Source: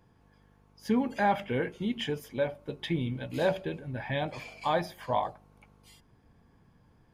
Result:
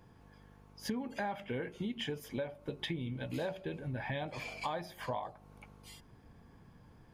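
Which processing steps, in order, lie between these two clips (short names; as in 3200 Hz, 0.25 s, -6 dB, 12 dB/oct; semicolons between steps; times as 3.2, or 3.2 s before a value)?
compressor 6:1, threshold -39 dBFS, peak gain reduction 17 dB; gain +3.5 dB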